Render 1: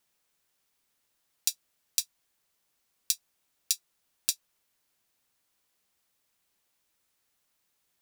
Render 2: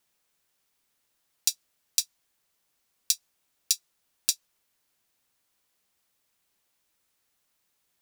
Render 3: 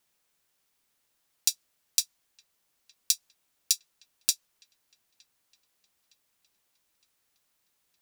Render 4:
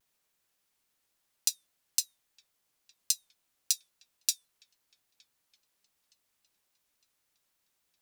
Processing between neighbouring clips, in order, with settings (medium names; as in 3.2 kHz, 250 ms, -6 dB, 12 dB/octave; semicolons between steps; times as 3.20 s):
dynamic bell 5.4 kHz, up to +4 dB, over -41 dBFS, Q 0.95; trim +1 dB
feedback echo behind a low-pass 913 ms, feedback 50%, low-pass 2.6 kHz, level -21.5 dB
feedback comb 630 Hz, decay 0.28 s, mix 30%; vibrato with a chosen wave saw down 3.6 Hz, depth 160 cents